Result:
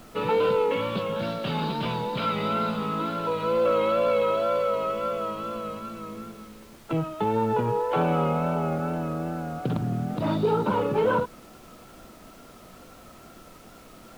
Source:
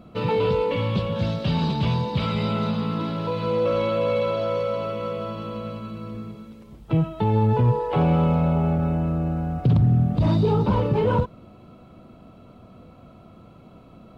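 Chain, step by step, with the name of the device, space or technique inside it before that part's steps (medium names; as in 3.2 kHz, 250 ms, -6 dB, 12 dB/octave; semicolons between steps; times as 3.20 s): horn gramophone (band-pass 250–3900 Hz; peaking EQ 1.4 kHz +7.5 dB 0.24 oct; wow and flutter; pink noise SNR 25 dB)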